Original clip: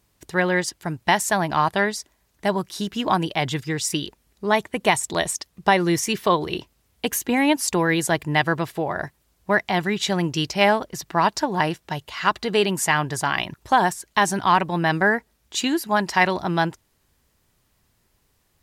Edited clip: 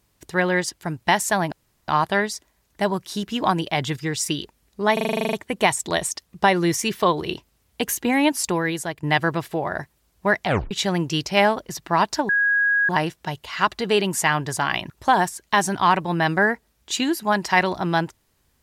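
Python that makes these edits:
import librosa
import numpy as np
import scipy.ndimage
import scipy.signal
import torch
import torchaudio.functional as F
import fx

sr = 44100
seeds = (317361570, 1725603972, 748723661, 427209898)

y = fx.edit(x, sr, fx.insert_room_tone(at_s=1.52, length_s=0.36),
    fx.stutter(start_s=4.57, slice_s=0.04, count=11),
    fx.fade_out_to(start_s=7.6, length_s=0.67, floor_db=-11.5),
    fx.tape_stop(start_s=9.7, length_s=0.25),
    fx.insert_tone(at_s=11.53, length_s=0.6, hz=1650.0, db=-16.0), tone=tone)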